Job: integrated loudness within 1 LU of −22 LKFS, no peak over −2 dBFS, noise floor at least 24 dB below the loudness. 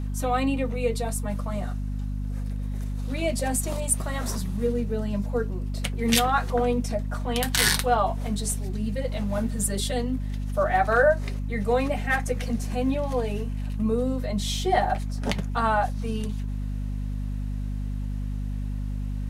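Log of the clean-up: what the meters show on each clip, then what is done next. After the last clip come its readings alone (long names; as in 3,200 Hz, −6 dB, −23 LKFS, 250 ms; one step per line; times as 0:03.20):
mains hum 50 Hz; hum harmonics up to 250 Hz; level of the hum −27 dBFS; integrated loudness −26.5 LKFS; sample peak −5.0 dBFS; target loudness −22.0 LKFS
→ hum removal 50 Hz, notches 5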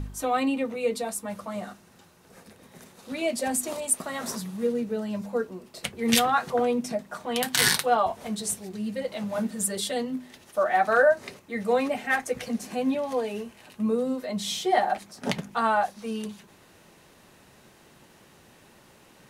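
mains hum none found; integrated loudness −27.0 LKFS; sample peak −5.5 dBFS; target loudness −22.0 LKFS
→ level +5 dB
brickwall limiter −2 dBFS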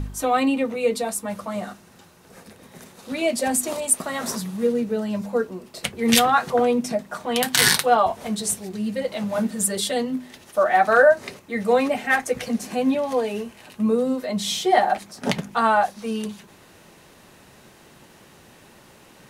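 integrated loudness −22.0 LKFS; sample peak −2.0 dBFS; background noise floor −51 dBFS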